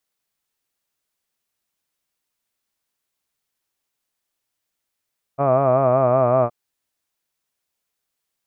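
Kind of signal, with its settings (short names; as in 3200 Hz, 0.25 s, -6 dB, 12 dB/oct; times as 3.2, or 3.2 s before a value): formant-synthesis vowel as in hud, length 1.12 s, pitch 135 Hz, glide -1.5 st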